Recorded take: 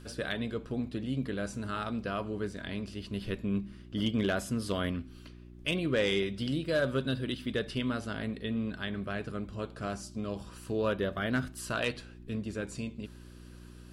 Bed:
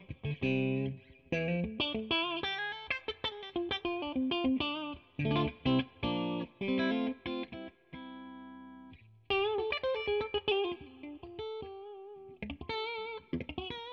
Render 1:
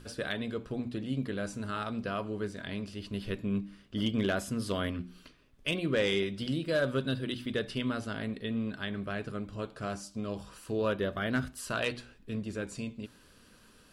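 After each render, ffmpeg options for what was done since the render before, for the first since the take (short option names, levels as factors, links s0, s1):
-af "bandreject=f=60:t=h:w=4,bandreject=f=120:t=h:w=4,bandreject=f=180:t=h:w=4,bandreject=f=240:t=h:w=4,bandreject=f=300:t=h:w=4,bandreject=f=360:t=h:w=4"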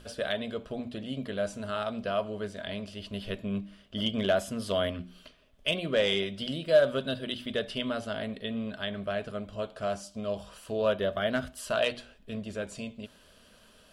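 -af "equalizer=f=125:t=o:w=0.33:g=-8,equalizer=f=315:t=o:w=0.33:g=-7,equalizer=f=630:t=o:w=0.33:g=12,equalizer=f=3150:t=o:w=0.33:g=7"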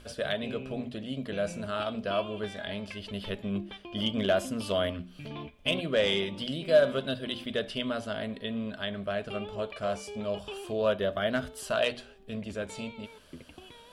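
-filter_complex "[1:a]volume=0.316[s0];[0:a][s0]amix=inputs=2:normalize=0"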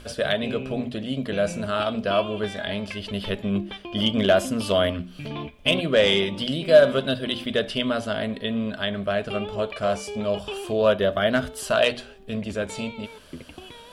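-af "volume=2.37"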